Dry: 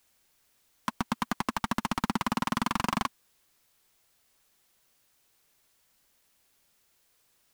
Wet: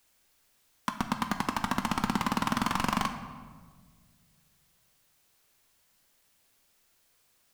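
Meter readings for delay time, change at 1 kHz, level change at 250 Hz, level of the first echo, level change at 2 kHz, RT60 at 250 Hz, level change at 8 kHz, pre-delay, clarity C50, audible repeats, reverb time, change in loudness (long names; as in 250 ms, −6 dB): no echo audible, +1.0 dB, +0.5 dB, no echo audible, +1.0 dB, 2.2 s, +0.5 dB, 10 ms, 9.5 dB, no echo audible, 1.6 s, +0.5 dB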